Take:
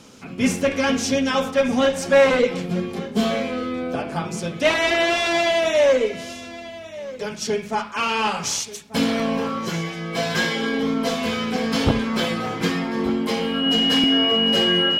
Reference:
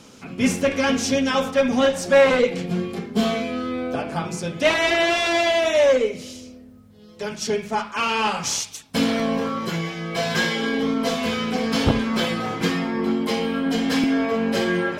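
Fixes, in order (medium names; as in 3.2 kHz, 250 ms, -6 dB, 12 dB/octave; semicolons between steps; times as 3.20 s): band-stop 2.9 kHz, Q 30; inverse comb 1187 ms -17 dB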